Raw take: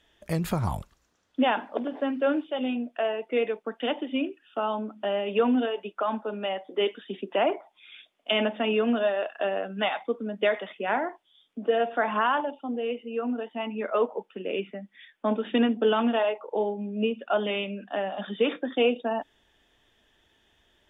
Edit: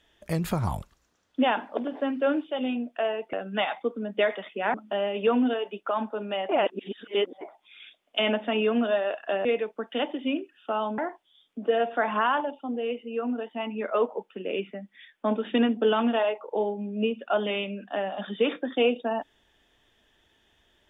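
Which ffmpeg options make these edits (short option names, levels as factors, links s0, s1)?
-filter_complex "[0:a]asplit=7[s0][s1][s2][s3][s4][s5][s6];[s0]atrim=end=3.332[s7];[s1]atrim=start=9.568:end=10.982[s8];[s2]atrim=start=4.858:end=6.612[s9];[s3]atrim=start=6.608:end=7.532,asetpts=PTS-STARTPTS,areverse[s10];[s4]atrim=start=7.528:end=9.572[s11];[s5]atrim=start=3.328:end=4.862[s12];[s6]atrim=start=10.978[s13];[s7][s8]acrossfade=d=0.004:c1=hsin:c2=hsin[s14];[s14][s9]acrossfade=d=0.004:c1=hsin:c2=hsin[s15];[s15][s10]acrossfade=d=0.004:c1=hsin:c2=hsin[s16];[s16][s11]acrossfade=d=0.004:c1=hsin:c2=hsin[s17];[s17][s12]acrossfade=d=0.004:c1=hsin:c2=hsin[s18];[s18][s13]acrossfade=d=0.004:c1=hsin:c2=hsin"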